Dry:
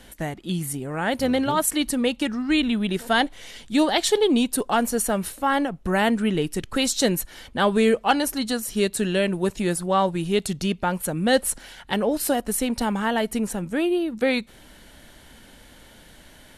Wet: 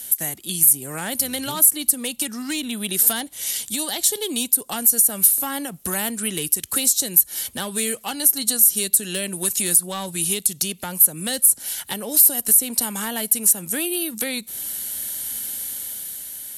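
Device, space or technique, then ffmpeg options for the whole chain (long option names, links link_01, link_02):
FM broadcast chain: -filter_complex "[0:a]highpass=frequency=63:width=0.5412,highpass=frequency=63:width=1.3066,dynaudnorm=framelen=160:gausssize=11:maxgain=6dB,acrossover=split=290|1100[link_01][link_02][link_03];[link_01]acompressor=threshold=-27dB:ratio=4[link_04];[link_02]acompressor=threshold=-28dB:ratio=4[link_05];[link_03]acompressor=threshold=-31dB:ratio=4[link_06];[link_04][link_05][link_06]amix=inputs=3:normalize=0,aemphasis=mode=production:type=75fm,alimiter=limit=-12.5dB:level=0:latency=1:release=201,asoftclip=type=hard:threshold=-16.5dB,lowpass=frequency=15000:width=0.5412,lowpass=frequency=15000:width=1.3066,aemphasis=mode=production:type=75fm,volume=-4dB"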